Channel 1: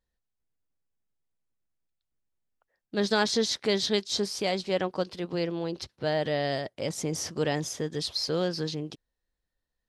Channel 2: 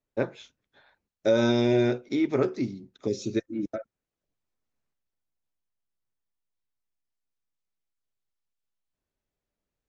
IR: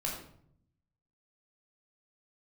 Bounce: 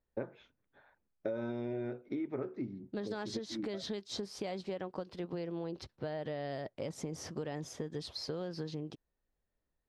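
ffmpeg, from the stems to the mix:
-filter_complex "[0:a]highshelf=f=2.5k:g=-11.5,acompressor=threshold=-28dB:ratio=6,volume=-2.5dB,asplit=2[a][b];[1:a]lowpass=1.8k,volume=-2.5dB[c];[b]apad=whole_len=436035[d];[c][d]sidechaincompress=threshold=-39dB:ratio=8:attack=16:release=390[e];[a][e]amix=inputs=2:normalize=0,acompressor=threshold=-35dB:ratio=6"

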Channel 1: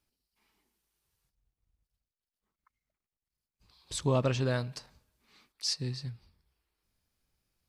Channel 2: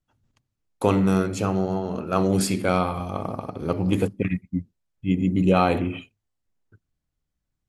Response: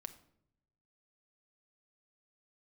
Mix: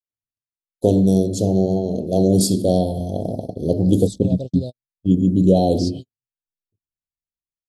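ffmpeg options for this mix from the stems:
-filter_complex "[0:a]adelay=150,volume=-6dB[a];[1:a]bandreject=f=790:w=13,volume=1dB,asplit=2[b][c];[c]apad=whole_len=345572[d];[a][d]sidechaingate=range=-33dB:threshold=-35dB:ratio=16:detection=peak[e];[e][b]amix=inputs=2:normalize=0,agate=range=-35dB:threshold=-32dB:ratio=16:detection=peak,dynaudnorm=f=110:g=9:m=11.5dB,asuperstop=centerf=1600:order=12:qfactor=0.57"

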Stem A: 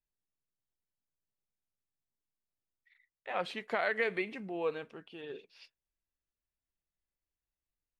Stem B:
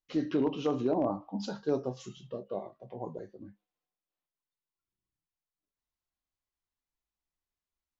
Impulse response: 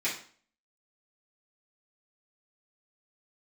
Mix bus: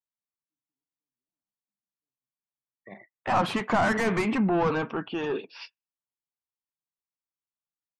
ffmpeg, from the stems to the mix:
-filter_complex "[0:a]asplit=2[a][b];[b]highpass=f=720:p=1,volume=28dB,asoftclip=type=tanh:threshold=-18dB[c];[a][c]amix=inputs=2:normalize=0,lowpass=f=3.6k:p=1,volume=-6dB,volume=2.5dB,asplit=2[d][e];[1:a]adelay=350,volume=-9dB[f];[e]apad=whole_len=367951[g];[f][g]sidechaingate=range=-39dB:threshold=-46dB:ratio=16:detection=peak[h];[d][h]amix=inputs=2:normalize=0,afftdn=nr=29:nf=-50,equalizer=f=125:t=o:w=1:g=10,equalizer=f=250:t=o:w=1:g=7,equalizer=f=500:t=o:w=1:g=-7,equalizer=f=1k:t=o:w=1:g=7,equalizer=f=2k:t=o:w=1:g=-7,equalizer=f=4k:t=o:w=1:g=-8"

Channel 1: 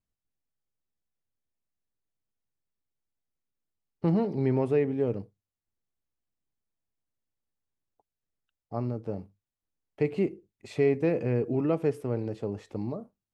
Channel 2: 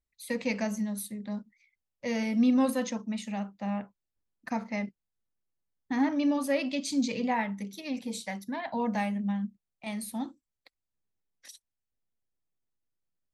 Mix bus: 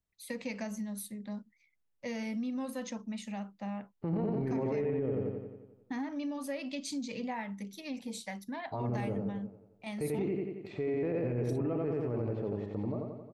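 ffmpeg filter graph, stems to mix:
-filter_complex "[0:a]lowpass=2.5k,volume=-2.5dB,asplit=2[a][b];[b]volume=-3.5dB[c];[1:a]acompressor=threshold=-30dB:ratio=5,volume=-4dB[d];[c]aecho=0:1:89|178|267|356|445|534|623|712|801:1|0.58|0.336|0.195|0.113|0.0656|0.0381|0.0221|0.0128[e];[a][d][e]amix=inputs=3:normalize=0,alimiter=level_in=1.5dB:limit=-24dB:level=0:latency=1:release=19,volume=-1.5dB"

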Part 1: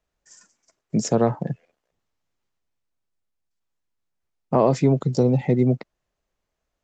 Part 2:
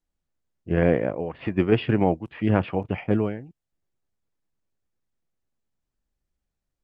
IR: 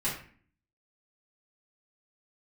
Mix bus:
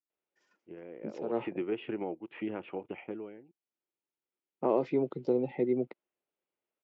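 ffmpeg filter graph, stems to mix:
-filter_complex "[0:a]adelay=100,volume=-7.5dB[a];[1:a]acompressor=threshold=-26dB:ratio=6,volume=-2.5dB,afade=t=in:st=0.88:d=0.76:silence=0.251189,afade=t=out:st=2.65:d=0.68:silence=0.446684,asplit=2[b][c];[c]apad=whole_len=305855[d];[a][d]sidechaincompress=threshold=-43dB:ratio=5:attack=11:release=110[e];[e][b]amix=inputs=2:normalize=0,highpass=330,equalizer=f=350:t=q:w=4:g=6,equalizer=f=670:t=q:w=4:g=-5,equalizer=f=1.1k:t=q:w=4:g=-5,equalizer=f=1.7k:t=q:w=4:g=-7,lowpass=f=3.1k:w=0.5412,lowpass=f=3.1k:w=1.3066"

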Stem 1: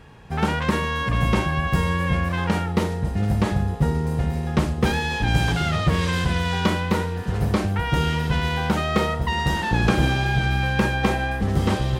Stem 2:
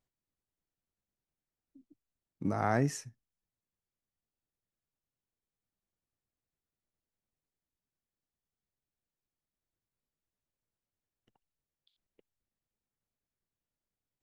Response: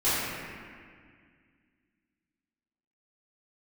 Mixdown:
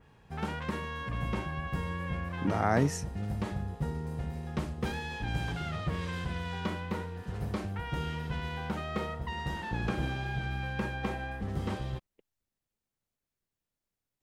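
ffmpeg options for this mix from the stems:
-filter_complex "[0:a]adynamicequalizer=threshold=0.01:dfrequency=3400:dqfactor=0.7:tfrequency=3400:tqfactor=0.7:attack=5:release=100:ratio=0.375:range=2.5:mode=cutabove:tftype=highshelf,volume=-13dB[a];[1:a]volume=2.5dB[b];[a][b]amix=inputs=2:normalize=0"

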